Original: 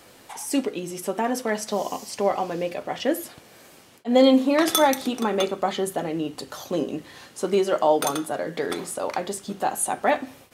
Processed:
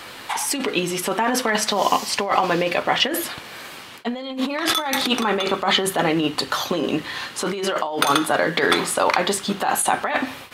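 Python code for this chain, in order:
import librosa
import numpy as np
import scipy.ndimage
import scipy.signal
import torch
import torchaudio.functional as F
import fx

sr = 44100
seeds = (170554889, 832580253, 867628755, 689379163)

y = fx.over_compress(x, sr, threshold_db=-27.0, ratio=-1.0)
y = fx.band_shelf(y, sr, hz=2000.0, db=8.5, octaves=2.6)
y = y * 10.0 ** (4.0 / 20.0)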